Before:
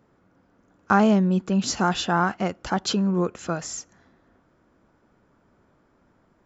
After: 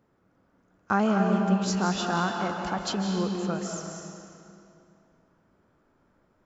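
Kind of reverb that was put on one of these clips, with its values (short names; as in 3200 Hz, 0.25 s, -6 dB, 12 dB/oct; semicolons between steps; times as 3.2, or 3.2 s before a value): digital reverb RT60 2.6 s, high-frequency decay 0.85×, pre-delay 0.115 s, DRR 2 dB; gain -6 dB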